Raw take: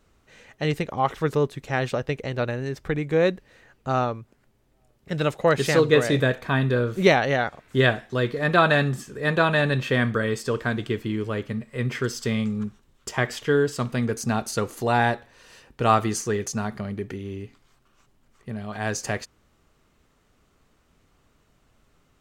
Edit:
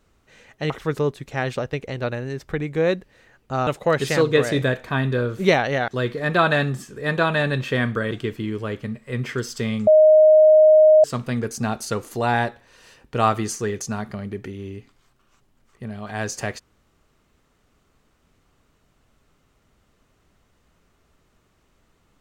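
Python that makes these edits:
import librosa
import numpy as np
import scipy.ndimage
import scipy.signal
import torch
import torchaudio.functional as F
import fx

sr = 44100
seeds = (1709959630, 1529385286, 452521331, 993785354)

y = fx.edit(x, sr, fx.cut(start_s=0.7, length_s=0.36),
    fx.cut(start_s=4.03, length_s=1.22),
    fx.cut(start_s=7.46, length_s=0.61),
    fx.cut(start_s=10.3, length_s=0.47),
    fx.bleep(start_s=12.53, length_s=1.17, hz=621.0, db=-8.5), tone=tone)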